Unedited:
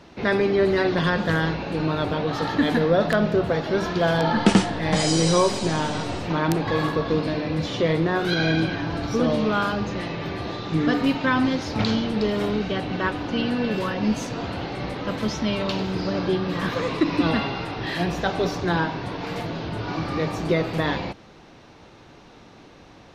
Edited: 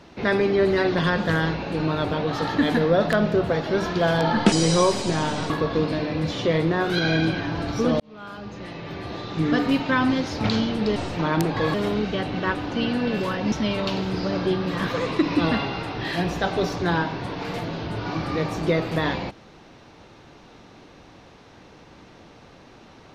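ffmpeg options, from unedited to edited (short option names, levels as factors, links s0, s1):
-filter_complex "[0:a]asplit=7[s0][s1][s2][s3][s4][s5][s6];[s0]atrim=end=4.522[s7];[s1]atrim=start=5.088:end=6.072[s8];[s2]atrim=start=6.848:end=9.35,asetpts=PTS-STARTPTS,afade=t=out:st=2.498:d=0.004:c=hsin[s9];[s3]atrim=start=9.35:end=12.312,asetpts=PTS-STARTPTS,afade=t=in:d=1.53[s10];[s4]atrim=start=6.068:end=6.852[s11];[s5]atrim=start=12.308:end=14.092[s12];[s6]atrim=start=15.338[s13];[s7][s8]acrossfade=d=0.004:c1=hsin:c2=hsin[s14];[s9][s10]concat=n=2:v=0:a=1[s15];[s14][s15]acrossfade=d=0.004:c1=hsin:c2=hsin[s16];[s16][s11]acrossfade=d=0.004:c1=hsin:c2=hsin[s17];[s17][s12]acrossfade=d=0.004:c1=hsin:c2=hsin[s18];[s18][s13]acrossfade=d=0.004:c1=hsin:c2=hsin"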